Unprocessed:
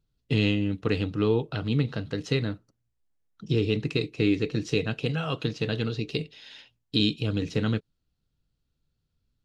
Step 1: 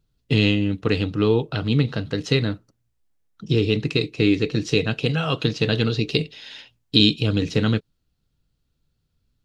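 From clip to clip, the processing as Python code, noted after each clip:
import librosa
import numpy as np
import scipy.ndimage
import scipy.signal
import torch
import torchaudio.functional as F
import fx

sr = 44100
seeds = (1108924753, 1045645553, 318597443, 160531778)

y = fx.dynamic_eq(x, sr, hz=4200.0, q=1.1, threshold_db=-44.0, ratio=4.0, max_db=3)
y = fx.rider(y, sr, range_db=10, speed_s=2.0)
y = F.gain(torch.from_numpy(y), 5.0).numpy()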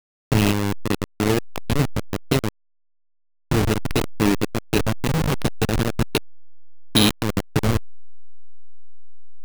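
y = fx.delta_hold(x, sr, step_db=-13.5)
y = np.repeat(y[::3], 3)[:len(y)]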